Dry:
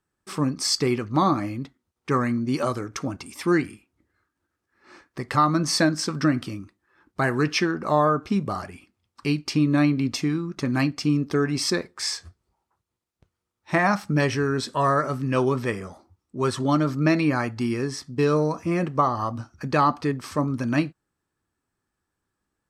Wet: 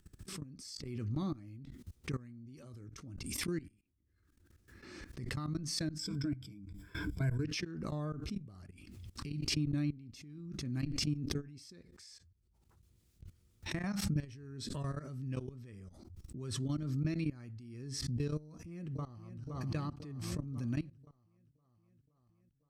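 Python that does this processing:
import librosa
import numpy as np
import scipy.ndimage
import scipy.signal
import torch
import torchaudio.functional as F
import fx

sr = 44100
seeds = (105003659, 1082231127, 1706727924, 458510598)

y = fx.ripple_eq(x, sr, per_octave=1.7, db=16, at=(5.99, 7.45))
y = fx.echo_throw(y, sr, start_s=18.43, length_s=0.98, ms=520, feedback_pct=60, wet_db=-8.5)
y = fx.level_steps(y, sr, step_db=20)
y = fx.tone_stack(y, sr, knobs='10-0-1')
y = fx.pre_swell(y, sr, db_per_s=31.0)
y = y * 10.0 ** (5.5 / 20.0)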